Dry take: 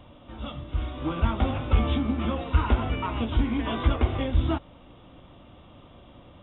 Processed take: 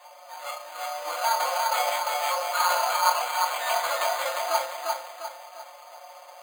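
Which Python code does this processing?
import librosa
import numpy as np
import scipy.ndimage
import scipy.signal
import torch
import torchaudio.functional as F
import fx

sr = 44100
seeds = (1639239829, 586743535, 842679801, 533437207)

p1 = scipy.signal.sosfilt(scipy.signal.cheby1(5, 1.0, 600.0, 'highpass', fs=sr, output='sos'), x)
p2 = fx.high_shelf(p1, sr, hz=2900.0, db=-8.0)
p3 = p2 + 0.91 * np.pad(p2, (int(5.6 * sr / 1000.0), 0))[:len(p2)]
p4 = p3 + fx.echo_feedback(p3, sr, ms=350, feedback_pct=42, wet_db=-3.5, dry=0)
p5 = fx.rev_fdn(p4, sr, rt60_s=0.4, lf_ratio=1.55, hf_ratio=0.6, size_ms=20.0, drr_db=0.0)
p6 = np.repeat(p5[::8], 8)[:len(p5)]
y = F.gain(torch.from_numpy(p6), 3.5).numpy()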